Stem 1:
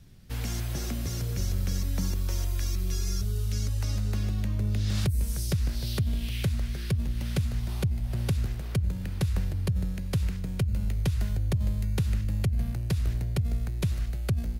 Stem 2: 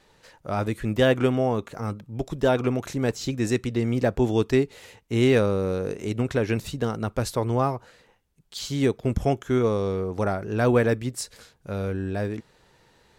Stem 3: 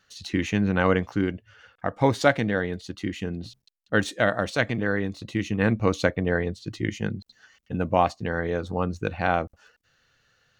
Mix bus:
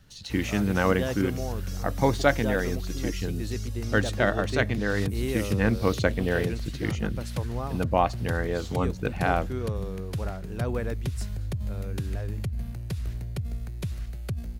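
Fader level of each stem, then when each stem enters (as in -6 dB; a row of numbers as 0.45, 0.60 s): -4.5, -11.5, -2.0 dB; 0.00, 0.00, 0.00 s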